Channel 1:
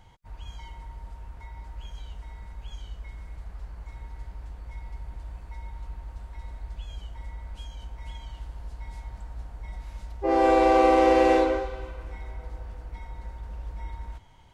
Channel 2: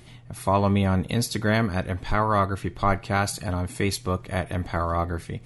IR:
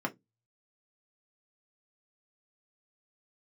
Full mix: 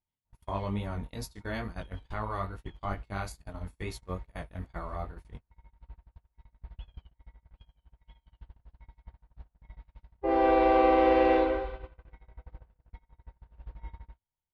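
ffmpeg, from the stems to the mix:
-filter_complex "[0:a]lowpass=frequency=3800:width=0.5412,lowpass=frequency=3800:width=1.3066,volume=-3.5dB[link_01];[1:a]flanger=delay=17.5:depth=4.5:speed=2.3,volume=-10dB[link_02];[link_01][link_02]amix=inputs=2:normalize=0,agate=range=-37dB:threshold=-37dB:ratio=16:detection=peak"

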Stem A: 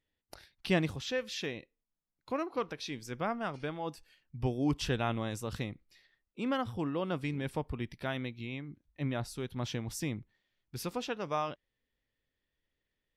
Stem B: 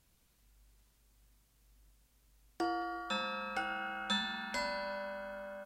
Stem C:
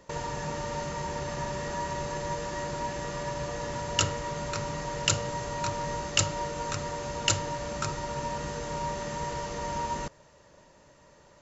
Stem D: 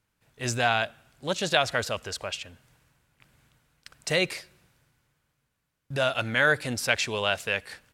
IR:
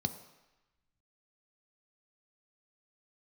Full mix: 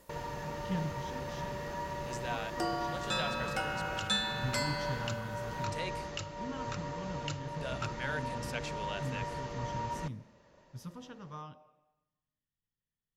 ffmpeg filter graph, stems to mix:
-filter_complex "[0:a]volume=-12dB,asplit=2[link_01][link_02];[link_02]volume=-5.5dB[link_03];[1:a]highshelf=frequency=4400:gain=11,volume=0dB[link_04];[2:a]alimiter=limit=-17dB:level=0:latency=1:release=457,lowpass=4600,volume=-5.5dB[link_05];[3:a]adelay=1650,volume=-16dB[link_06];[4:a]atrim=start_sample=2205[link_07];[link_03][link_07]afir=irnorm=-1:irlink=0[link_08];[link_01][link_04][link_05][link_06][link_08]amix=inputs=5:normalize=0"

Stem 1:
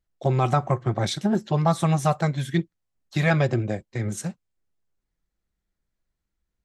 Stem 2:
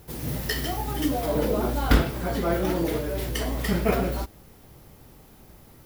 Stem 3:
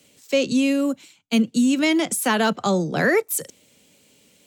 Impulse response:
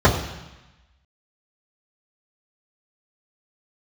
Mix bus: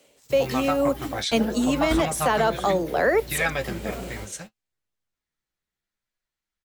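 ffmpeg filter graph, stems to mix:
-filter_complex "[0:a]equalizer=frequency=2800:width=0.45:gain=5,flanger=delay=8.3:depth=4.7:regen=43:speed=0.66:shape=sinusoidal,adelay=150,volume=1.5dB[link_01];[1:a]volume=-9.5dB[link_02];[2:a]equalizer=frequency=580:width=0.54:gain=14.5,dynaudnorm=framelen=140:gausssize=5:maxgain=16dB,volume=-5dB,asplit=2[link_03][link_04];[link_04]apad=whole_len=258127[link_05];[link_02][link_05]sidechaingate=range=-38dB:threshold=-52dB:ratio=16:detection=peak[link_06];[link_01][link_03]amix=inputs=2:normalize=0,lowshelf=frequency=400:gain=-11,alimiter=limit=-12dB:level=0:latency=1:release=192,volume=0dB[link_07];[link_06][link_07]amix=inputs=2:normalize=0"

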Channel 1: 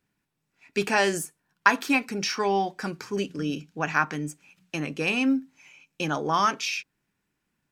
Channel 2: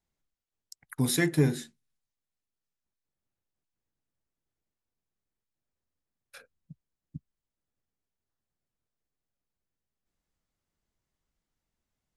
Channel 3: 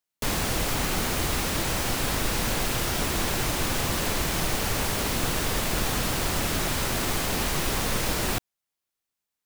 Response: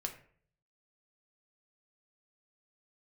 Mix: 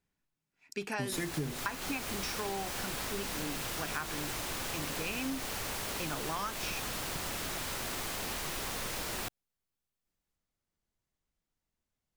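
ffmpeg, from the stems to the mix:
-filter_complex "[0:a]volume=-9.5dB[link_01];[1:a]volume=-3dB[link_02];[2:a]lowshelf=frequency=360:gain=-7,adelay=900,volume=-8dB[link_03];[link_01][link_02][link_03]amix=inputs=3:normalize=0,acompressor=threshold=-32dB:ratio=6"

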